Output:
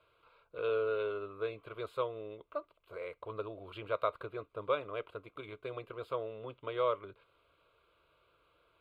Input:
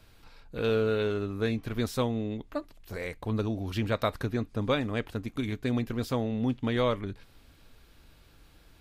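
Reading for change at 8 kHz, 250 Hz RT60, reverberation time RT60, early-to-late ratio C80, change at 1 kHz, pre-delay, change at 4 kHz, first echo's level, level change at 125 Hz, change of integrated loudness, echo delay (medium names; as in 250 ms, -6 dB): under -25 dB, no reverb, no reverb, no reverb, -3.0 dB, no reverb, -12.0 dB, no echo, -20.0 dB, -7.5 dB, no echo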